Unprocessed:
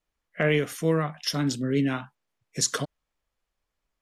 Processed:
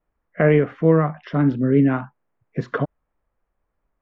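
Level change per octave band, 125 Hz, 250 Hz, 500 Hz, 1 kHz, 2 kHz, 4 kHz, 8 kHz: +8.5 dB, +8.5 dB, +8.0 dB, +6.5 dB, +2.0 dB, under -15 dB, under -35 dB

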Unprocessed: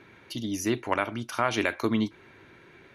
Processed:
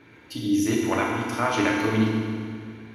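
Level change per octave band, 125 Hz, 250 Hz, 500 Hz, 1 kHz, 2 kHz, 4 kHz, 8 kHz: +7.5 dB, +6.5 dB, +3.5 dB, +3.5 dB, +3.5 dB, +2.5 dB, +3.5 dB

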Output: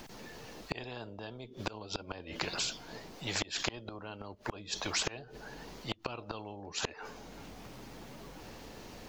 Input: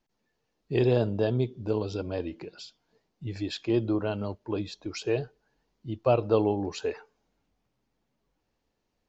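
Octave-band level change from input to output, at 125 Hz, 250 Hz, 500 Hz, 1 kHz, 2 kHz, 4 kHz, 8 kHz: -14.5 dB, -14.0 dB, -16.0 dB, -5.5 dB, +2.0 dB, +4.5 dB, no reading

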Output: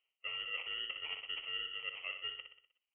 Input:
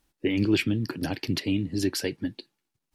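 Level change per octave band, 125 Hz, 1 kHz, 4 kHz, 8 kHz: under -40 dB, -8.5 dB, -2.5 dB, under -40 dB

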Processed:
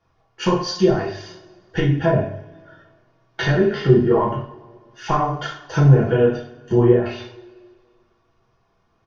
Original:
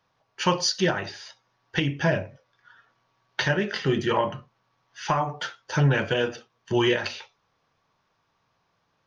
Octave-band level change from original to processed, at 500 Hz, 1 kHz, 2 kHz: +8.5 dB, +4.0 dB, -1.5 dB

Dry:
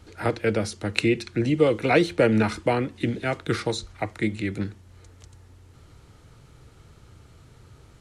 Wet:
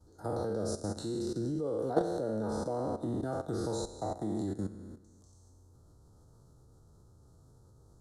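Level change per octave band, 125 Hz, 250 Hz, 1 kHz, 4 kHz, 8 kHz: -10.5 dB, -10.0 dB, -9.0 dB, -15.5 dB, -6.0 dB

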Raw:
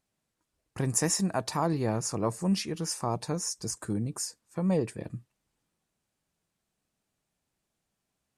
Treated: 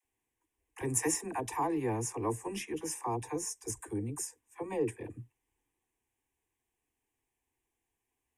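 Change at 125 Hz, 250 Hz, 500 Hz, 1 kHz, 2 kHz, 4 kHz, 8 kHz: -9.0 dB, -6.5 dB, -3.5 dB, -2.0 dB, -2.5 dB, -11.0 dB, -4.0 dB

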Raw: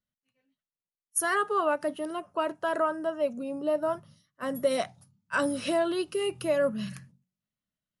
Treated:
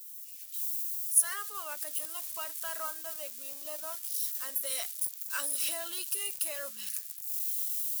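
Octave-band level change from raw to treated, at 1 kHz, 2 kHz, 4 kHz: -13.0 dB, -8.5 dB, 0.0 dB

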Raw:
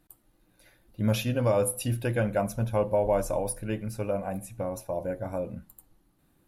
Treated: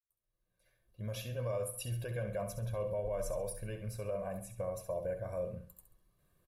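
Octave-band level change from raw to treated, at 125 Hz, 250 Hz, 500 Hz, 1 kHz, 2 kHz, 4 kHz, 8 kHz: -9.5 dB, -16.0 dB, -9.0 dB, -13.0 dB, -12.0 dB, -10.0 dB, -10.0 dB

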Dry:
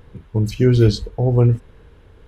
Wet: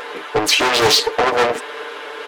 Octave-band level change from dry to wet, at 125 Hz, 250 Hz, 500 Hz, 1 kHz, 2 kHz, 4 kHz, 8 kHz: -20.5 dB, -7.0 dB, +3.0 dB, +18.5 dB, +18.5 dB, +17.5 dB, no reading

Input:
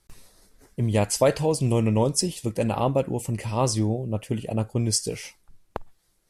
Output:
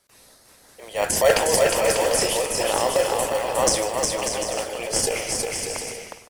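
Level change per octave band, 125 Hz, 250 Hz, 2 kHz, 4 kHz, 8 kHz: -14.0 dB, -7.5 dB, +11.5 dB, +7.5 dB, +7.5 dB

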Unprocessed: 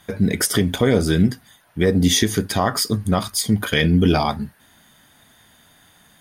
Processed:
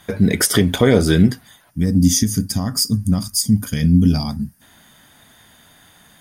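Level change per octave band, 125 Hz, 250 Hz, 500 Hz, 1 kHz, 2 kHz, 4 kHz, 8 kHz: +3.5 dB, +3.0 dB, 0.0 dB, -7.0 dB, -2.0 dB, -0.5 dB, +3.5 dB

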